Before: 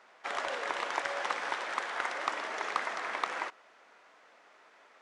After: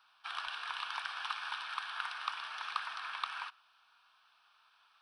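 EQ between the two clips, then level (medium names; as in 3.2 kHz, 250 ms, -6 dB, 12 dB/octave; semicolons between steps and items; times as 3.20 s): dynamic bell 1.9 kHz, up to +5 dB, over -46 dBFS, Q 1.2; amplifier tone stack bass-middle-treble 10-0-10; static phaser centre 2 kHz, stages 6; +2.0 dB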